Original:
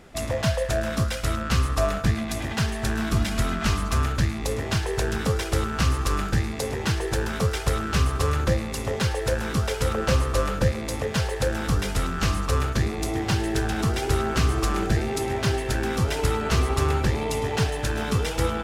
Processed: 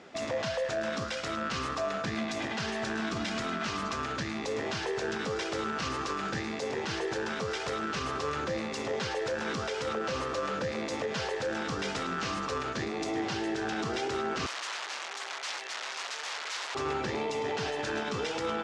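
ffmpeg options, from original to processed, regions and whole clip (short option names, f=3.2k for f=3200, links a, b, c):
-filter_complex "[0:a]asettb=1/sr,asplit=3[a][b][c];[a]atrim=end=14.464[d];[b]atrim=start=14.46:end=16.75,asetpts=PTS-STARTPTS,afade=t=in:d=0.004:c=qsin,afade=t=out:st=2.286:d=0.004:c=qsin,aeval=exprs='(mod(11.9*val(0)+1,2)-1)/11.9':c=same,highpass=920[e];[c]atrim=start=16.746[f];[d][e]acrossfade=d=0.004:c1=hsin:c2=qsin[g];[g][f]acrossfade=d=0.004:c1=qsin:c2=hsin,highpass=240,alimiter=limit=-23.5dB:level=0:latency=1:release=52,lowpass=f=6.5k:w=0.5412,lowpass=f=6.5k:w=1.3066"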